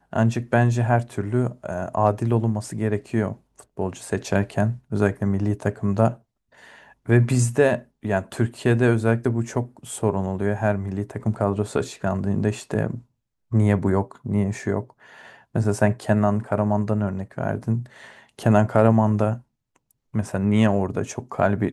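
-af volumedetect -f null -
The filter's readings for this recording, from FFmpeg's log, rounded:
mean_volume: -22.6 dB
max_volume: -2.3 dB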